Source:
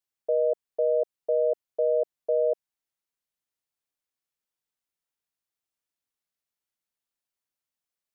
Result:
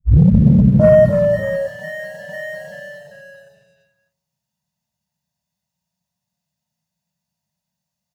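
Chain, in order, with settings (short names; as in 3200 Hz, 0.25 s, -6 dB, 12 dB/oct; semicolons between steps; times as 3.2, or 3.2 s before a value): tape start at the beginning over 0.69 s; comb 1.1 ms, depth 66%; reverb RT60 0.95 s, pre-delay 3 ms, DRR -16.5 dB; compressor 12:1, threshold -1 dBFS, peak gain reduction 17 dB; sample leveller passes 1; spectral gain 1.05–3.81, 320–730 Hz -23 dB; echoes that change speed 0.247 s, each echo -1 st, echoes 2, each echo -6 dB; gain -8 dB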